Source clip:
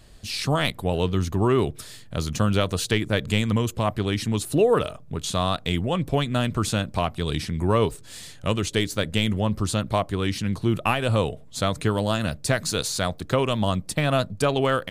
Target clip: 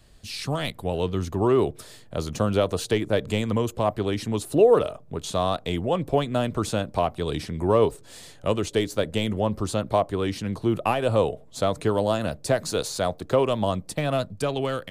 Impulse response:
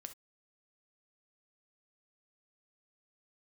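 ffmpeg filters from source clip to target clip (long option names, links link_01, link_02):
-filter_complex "[0:a]acrossover=split=350|930|2100[link_01][link_02][link_03][link_04];[link_02]dynaudnorm=framelen=210:gausssize=11:maxgain=10dB[link_05];[link_03]asoftclip=type=tanh:threshold=-31.5dB[link_06];[link_01][link_05][link_06][link_04]amix=inputs=4:normalize=0,volume=-4.5dB"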